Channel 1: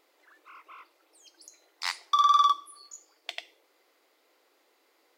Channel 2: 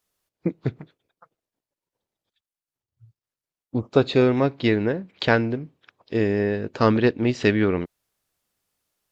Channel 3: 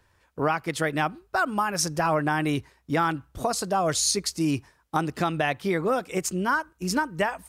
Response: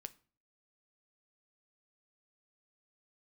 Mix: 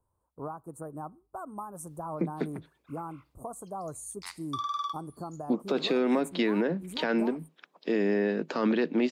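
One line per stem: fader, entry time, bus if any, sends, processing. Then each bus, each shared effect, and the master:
-14.0 dB, 2.40 s, send -6.5 dB, expander -55 dBFS
+0.5 dB, 1.75 s, no send, Chebyshev high-pass 160 Hz, order 8
-14.0 dB, 0.00 s, send -9 dB, elliptic band-stop 1100–8700 Hz, stop band 40 dB; bell 4800 Hz +10 dB 0.93 oct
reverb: on, RT60 0.40 s, pre-delay 7 ms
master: limiter -18 dBFS, peak gain reduction 13.5 dB

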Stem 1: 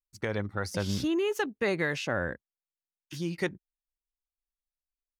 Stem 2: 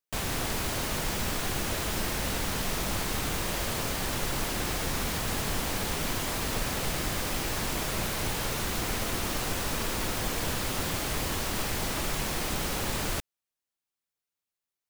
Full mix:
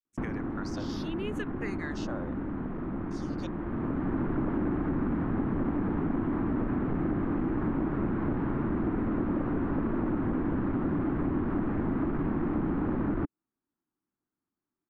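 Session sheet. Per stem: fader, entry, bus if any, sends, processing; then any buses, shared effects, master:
-5.5 dB, 0.00 s, no send, LPF 8400 Hz 12 dB/oct; endless phaser -0.76 Hz
-1.0 dB, 0.05 s, no send, LPF 1400 Hz 24 dB/oct; resonant low shelf 400 Hz +9.5 dB, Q 3; sine folder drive 4 dB, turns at -10 dBFS; auto duck -11 dB, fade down 0.35 s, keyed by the first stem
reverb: off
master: low shelf 160 Hz -11.5 dB; compressor 3:1, threshold -28 dBFS, peak gain reduction 7.5 dB

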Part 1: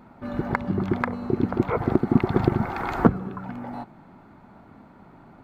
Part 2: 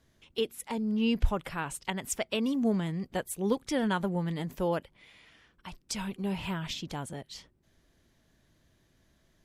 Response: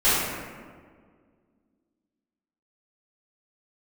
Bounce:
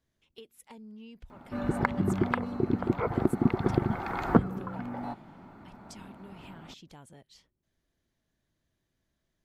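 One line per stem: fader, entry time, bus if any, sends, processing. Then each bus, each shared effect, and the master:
-4.5 dB, 1.30 s, no send, vocal rider within 4 dB 2 s
-12.5 dB, 0.00 s, no send, compressor 16:1, threshold -32 dBFS, peak gain reduction 16 dB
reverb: off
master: dry

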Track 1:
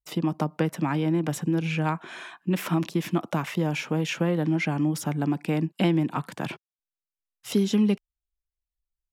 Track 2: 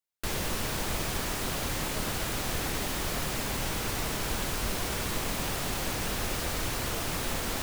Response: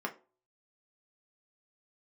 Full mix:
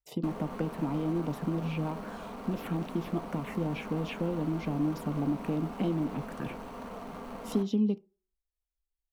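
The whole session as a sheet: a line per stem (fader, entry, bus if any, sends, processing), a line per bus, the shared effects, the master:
-5.0 dB, 0.00 s, send -13 dB, compressor 2:1, threshold -28 dBFS, peak gain reduction 6 dB; tilt shelf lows +4.5 dB, about 690 Hz; envelope phaser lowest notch 200 Hz, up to 1800 Hz, full sweep at -23 dBFS
0.0 dB, 0.00 s, send -9 dB, median filter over 25 samples; bell 350 Hz -12 dB 0.34 oct; auto duck -11 dB, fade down 0.30 s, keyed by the first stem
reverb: on, RT60 0.35 s, pre-delay 3 ms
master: dry

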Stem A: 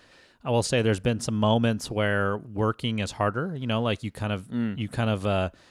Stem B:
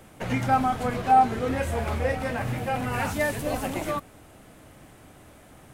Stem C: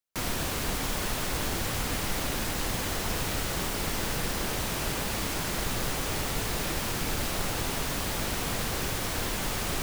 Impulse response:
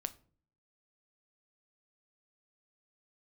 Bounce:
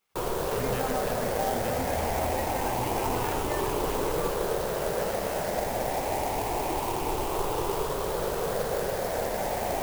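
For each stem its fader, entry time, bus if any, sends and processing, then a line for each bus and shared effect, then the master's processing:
-7.0 dB, 0.00 s, no send, spectral gate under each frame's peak -15 dB weak; high shelf 5400 Hz -6 dB
-4.5 dB, 0.30 s, no send, limiter -22 dBFS, peak gain reduction 13 dB
-4.5 dB, 0.00 s, no send, moving spectral ripple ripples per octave 0.64, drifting +0.26 Hz, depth 8 dB; band shelf 600 Hz +12.5 dB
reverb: off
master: bell 3900 Hz -6 dB 0.63 oct; clock jitter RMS 0.044 ms

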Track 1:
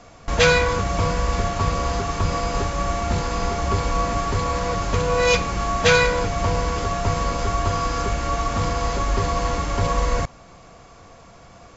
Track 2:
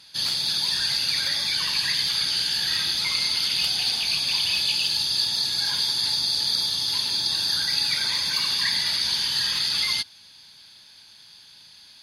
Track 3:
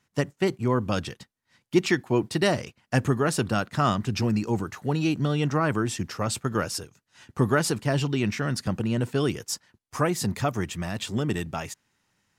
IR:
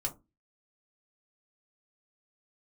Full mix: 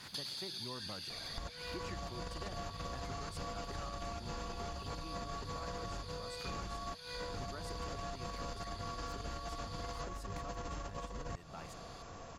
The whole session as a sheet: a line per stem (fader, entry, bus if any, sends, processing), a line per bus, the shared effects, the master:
-7.0 dB, 1.10 s, no send, notch 2200 Hz, Q 12; negative-ratio compressor -24 dBFS, ratio -0.5
-4.0 dB, 0.00 s, no send, compressor, threshold -27 dBFS, peak gain reduction 8 dB; auto duck -10 dB, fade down 1.15 s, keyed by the third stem
-19.0 dB, 0.00 s, no send, bell 1000 Hz +5 dB 1.9 oct; backwards sustainer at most 100 dB/s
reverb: off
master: compressor 6:1, threshold -40 dBFS, peak gain reduction 14 dB

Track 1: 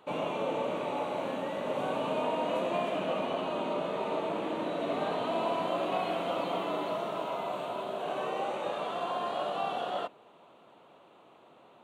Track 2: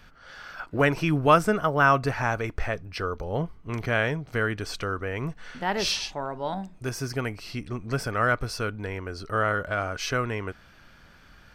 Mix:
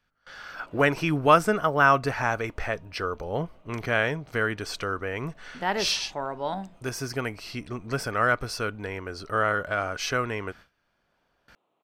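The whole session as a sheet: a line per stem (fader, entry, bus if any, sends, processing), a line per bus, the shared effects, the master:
-17.5 dB, 0.45 s, no send, auto duck -13 dB, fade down 1.95 s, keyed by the second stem
+1.0 dB, 0.00 s, no send, hum 50 Hz, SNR 35 dB; gate with hold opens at -40 dBFS; low shelf 170 Hz -7 dB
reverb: off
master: dry

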